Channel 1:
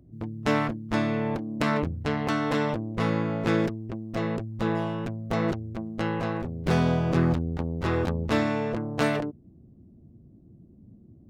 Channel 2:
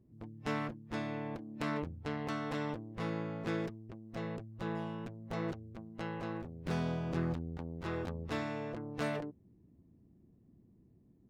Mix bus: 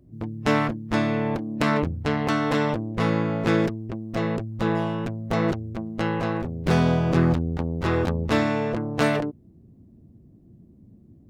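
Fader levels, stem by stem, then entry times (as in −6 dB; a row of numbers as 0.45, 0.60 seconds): +0.5, +3.0 decibels; 0.00, 0.00 seconds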